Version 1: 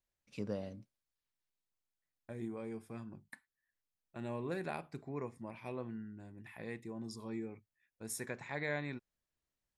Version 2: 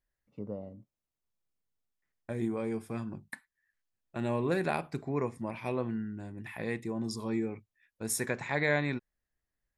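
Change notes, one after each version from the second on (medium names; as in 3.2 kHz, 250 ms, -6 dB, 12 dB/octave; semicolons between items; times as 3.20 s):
first voice: add Savitzky-Golay filter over 65 samples; second voice +9.5 dB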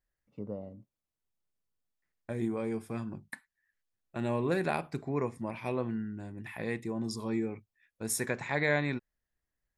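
no change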